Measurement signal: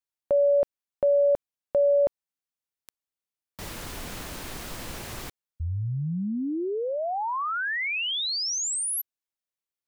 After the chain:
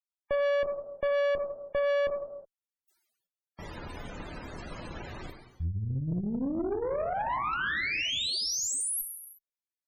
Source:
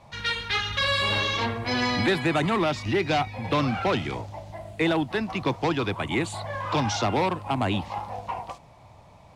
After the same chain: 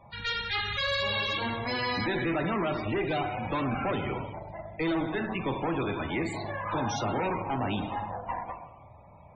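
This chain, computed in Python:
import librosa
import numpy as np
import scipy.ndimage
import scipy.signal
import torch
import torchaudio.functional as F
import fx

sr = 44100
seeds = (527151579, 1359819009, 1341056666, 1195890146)

y = fx.rev_gated(x, sr, seeds[0], gate_ms=390, shape='falling', drr_db=3.5)
y = fx.tube_stage(y, sr, drive_db=25.0, bias=0.6)
y = fx.spec_topn(y, sr, count=64)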